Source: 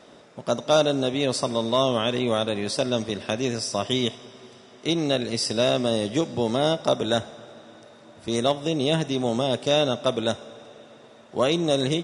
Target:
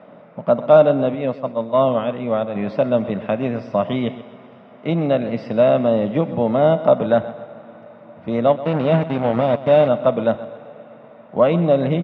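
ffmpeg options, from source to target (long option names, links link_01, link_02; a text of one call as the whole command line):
ffmpeg -i in.wav -filter_complex "[0:a]asplit=3[link_01][link_02][link_03];[link_01]afade=type=out:start_time=1.14:duration=0.02[link_04];[link_02]agate=range=-33dB:threshold=-18dB:ratio=3:detection=peak,afade=type=in:start_time=1.14:duration=0.02,afade=type=out:start_time=2.54:duration=0.02[link_05];[link_03]afade=type=in:start_time=2.54:duration=0.02[link_06];[link_04][link_05][link_06]amix=inputs=3:normalize=0,asettb=1/sr,asplit=3[link_07][link_08][link_09];[link_07]atrim=end=8.564[link_10];[link_08]atrim=start=8.56:end=9.88,asetpts=PTS-STARTPTS,afade=type=in:duration=0.004:curve=qsin,afade=type=out:start_time=1.316:duration=0.004:curve=qsin,acrusher=bits=3:mix=0:aa=0.5[link_11];[link_09]atrim=start=9.876[link_12];[link_10][link_11]acrossfade=duration=0.004:curve1=hsin:curve2=qsin[link_13];[link_13][link_12]acrossfade=duration=0.004:curve1=qsin:curve2=hsin,highpass=110,equalizer=frequency=180:width_type=q:width=4:gain=8,equalizer=frequency=370:width_type=q:width=4:gain=-9,equalizer=frequency=600:width_type=q:width=4:gain=5,equalizer=frequency=1700:width_type=q:width=4:gain=-6,lowpass=frequency=2200:width=0.5412,lowpass=frequency=2200:width=1.3066,aecho=1:1:129|258|387|516:0.168|0.0672|0.0269|0.0107,volume=5.5dB" out.wav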